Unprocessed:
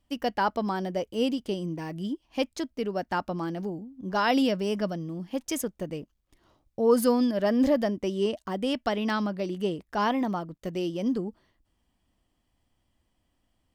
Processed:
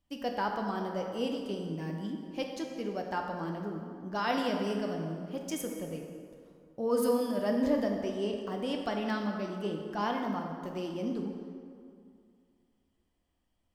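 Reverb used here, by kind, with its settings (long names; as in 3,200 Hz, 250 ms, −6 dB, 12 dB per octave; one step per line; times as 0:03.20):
dense smooth reverb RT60 2.3 s, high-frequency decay 0.6×, DRR 1.5 dB
level −7.5 dB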